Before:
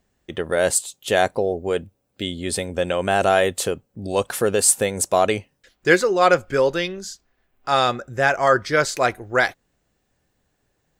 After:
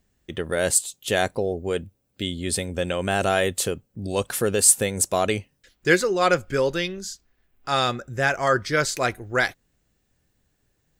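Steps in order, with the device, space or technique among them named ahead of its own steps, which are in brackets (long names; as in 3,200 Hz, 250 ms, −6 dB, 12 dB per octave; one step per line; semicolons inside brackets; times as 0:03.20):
smiley-face EQ (low-shelf EQ 140 Hz +4 dB; parametric band 760 Hz −5 dB 1.7 octaves; high-shelf EQ 8,100 Hz +3.5 dB)
level −1 dB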